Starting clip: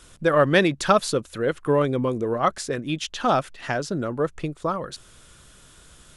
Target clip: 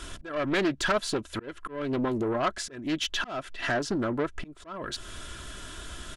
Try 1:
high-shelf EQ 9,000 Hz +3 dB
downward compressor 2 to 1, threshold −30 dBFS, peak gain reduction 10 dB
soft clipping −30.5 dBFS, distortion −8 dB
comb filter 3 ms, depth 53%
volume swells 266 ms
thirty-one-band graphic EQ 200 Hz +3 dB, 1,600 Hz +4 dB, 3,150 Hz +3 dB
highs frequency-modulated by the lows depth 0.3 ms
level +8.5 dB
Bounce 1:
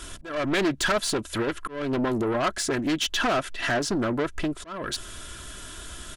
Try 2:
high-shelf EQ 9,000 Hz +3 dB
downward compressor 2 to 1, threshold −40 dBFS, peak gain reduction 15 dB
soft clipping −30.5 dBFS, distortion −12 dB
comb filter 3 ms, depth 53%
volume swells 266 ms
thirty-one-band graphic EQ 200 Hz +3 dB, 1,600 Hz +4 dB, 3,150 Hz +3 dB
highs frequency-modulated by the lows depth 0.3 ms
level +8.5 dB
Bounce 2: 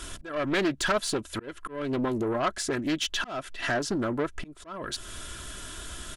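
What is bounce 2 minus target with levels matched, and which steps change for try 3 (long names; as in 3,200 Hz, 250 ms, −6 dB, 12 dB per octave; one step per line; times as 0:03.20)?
8,000 Hz band +4.0 dB
change: high-shelf EQ 9,000 Hz −8.5 dB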